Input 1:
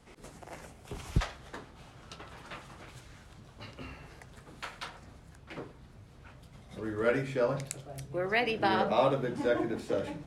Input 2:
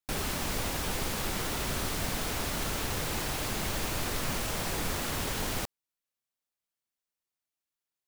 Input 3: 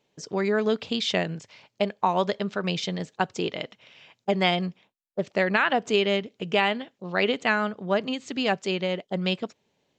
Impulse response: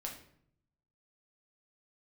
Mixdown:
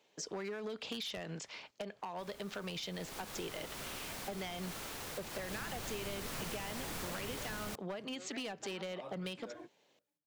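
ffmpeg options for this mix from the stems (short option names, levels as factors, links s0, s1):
-filter_complex "[0:a]volume=0.133[s0];[1:a]adelay=2100,volume=0.794,afade=t=in:st=2.9:d=0.37:silence=0.266073,afade=t=in:st=5.31:d=0.24:silence=0.446684[s1];[2:a]lowshelf=f=200:g=-9.5,acompressor=threshold=0.0501:ratio=10,volume=1.33,asplit=2[s2][s3];[s3]apad=whole_len=452700[s4];[s0][s4]sidechaingate=range=0.0224:threshold=0.00178:ratio=16:detection=peak[s5];[s5][s2]amix=inputs=2:normalize=0,asoftclip=type=hard:threshold=0.0631,alimiter=level_in=1.68:limit=0.0631:level=0:latency=1:release=21,volume=0.596,volume=1[s6];[s1][s6]amix=inputs=2:normalize=0,lowshelf=f=160:g=-12,acrossover=split=210[s7][s8];[s8]acompressor=threshold=0.0112:ratio=6[s9];[s7][s9]amix=inputs=2:normalize=0,asoftclip=type=tanh:threshold=0.0355"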